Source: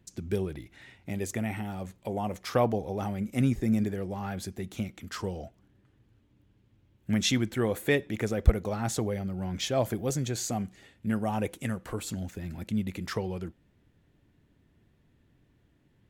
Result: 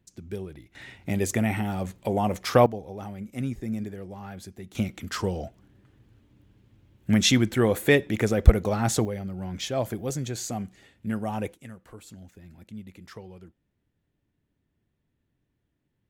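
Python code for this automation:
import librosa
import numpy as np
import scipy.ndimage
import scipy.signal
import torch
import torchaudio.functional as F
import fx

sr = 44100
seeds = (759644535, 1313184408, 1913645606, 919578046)

y = fx.gain(x, sr, db=fx.steps((0.0, -5.0), (0.75, 7.0), (2.66, -5.0), (4.75, 6.0), (9.05, -0.5), (11.53, -11.0)))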